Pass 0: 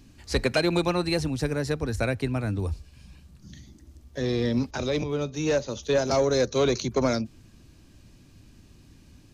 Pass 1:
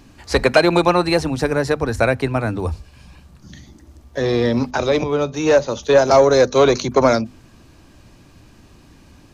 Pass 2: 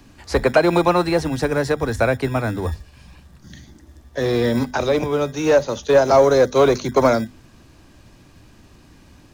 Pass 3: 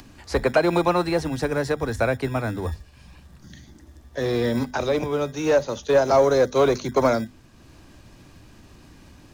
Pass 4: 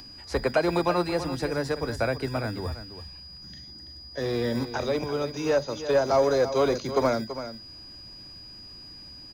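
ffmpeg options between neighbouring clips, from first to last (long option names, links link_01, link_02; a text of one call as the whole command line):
ffmpeg -i in.wav -af "equalizer=frequency=920:width=0.59:gain=9,bandreject=frequency=50:width_type=h:width=6,bandreject=frequency=100:width_type=h:width=6,bandreject=frequency=150:width_type=h:width=6,bandreject=frequency=200:width_type=h:width=6,bandreject=frequency=250:width_type=h:width=6,volume=5dB" out.wav
ffmpeg -i in.wav -filter_complex "[0:a]acrossover=split=220|700|1800[link_01][link_02][link_03][link_04];[link_01]acrusher=samples=25:mix=1:aa=0.000001[link_05];[link_04]alimiter=limit=-21.5dB:level=0:latency=1:release=101[link_06];[link_05][link_02][link_03][link_06]amix=inputs=4:normalize=0,volume=-1dB" out.wav
ffmpeg -i in.wav -af "acompressor=mode=upward:threshold=-37dB:ratio=2.5,volume=-4dB" out.wav
ffmpeg -i in.wav -af "aeval=exprs='val(0)+0.0112*sin(2*PI*4900*n/s)':channel_layout=same,aecho=1:1:332:0.266,volume=-4.5dB" out.wav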